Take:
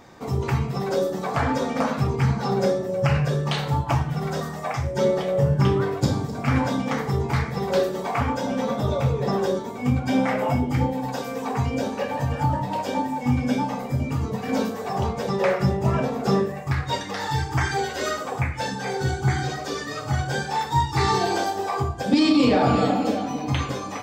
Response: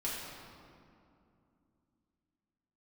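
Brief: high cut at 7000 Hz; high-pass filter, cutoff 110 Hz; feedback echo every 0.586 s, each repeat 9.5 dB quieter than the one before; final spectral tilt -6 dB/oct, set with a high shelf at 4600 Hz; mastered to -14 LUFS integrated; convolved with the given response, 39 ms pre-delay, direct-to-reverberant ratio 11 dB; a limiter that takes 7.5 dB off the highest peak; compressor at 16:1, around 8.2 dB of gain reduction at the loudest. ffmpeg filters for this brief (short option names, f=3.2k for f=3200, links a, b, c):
-filter_complex "[0:a]highpass=110,lowpass=7k,highshelf=f=4.6k:g=-9,acompressor=threshold=-22dB:ratio=16,alimiter=limit=-20dB:level=0:latency=1,aecho=1:1:586|1172|1758|2344:0.335|0.111|0.0365|0.012,asplit=2[a][b];[1:a]atrim=start_sample=2205,adelay=39[c];[b][c]afir=irnorm=-1:irlink=0,volume=-15dB[d];[a][d]amix=inputs=2:normalize=0,volume=14.5dB"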